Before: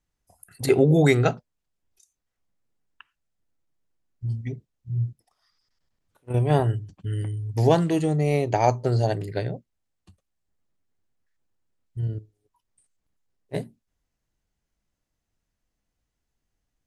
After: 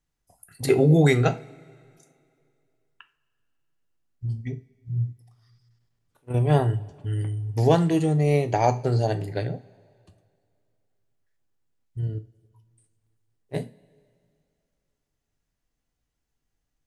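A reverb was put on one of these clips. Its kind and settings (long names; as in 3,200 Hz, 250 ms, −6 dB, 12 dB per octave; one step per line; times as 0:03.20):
coupled-rooms reverb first 0.29 s, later 2.4 s, from −22 dB, DRR 9 dB
level −1 dB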